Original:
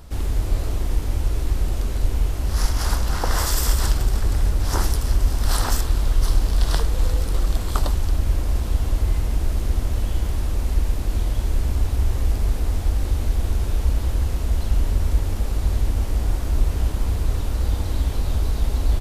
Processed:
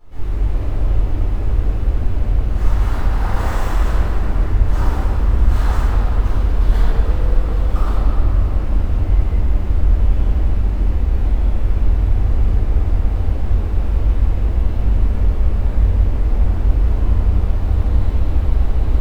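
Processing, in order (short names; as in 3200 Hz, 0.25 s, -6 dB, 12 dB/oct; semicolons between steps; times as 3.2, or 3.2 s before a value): median filter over 9 samples; reverb RT60 3.5 s, pre-delay 6 ms, DRR -16 dB; gain -16 dB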